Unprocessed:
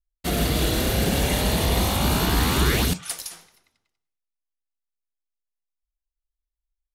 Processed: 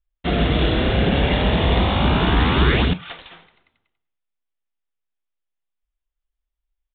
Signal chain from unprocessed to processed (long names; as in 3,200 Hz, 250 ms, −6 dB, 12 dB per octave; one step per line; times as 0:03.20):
downsampling to 8,000 Hz
level +4.5 dB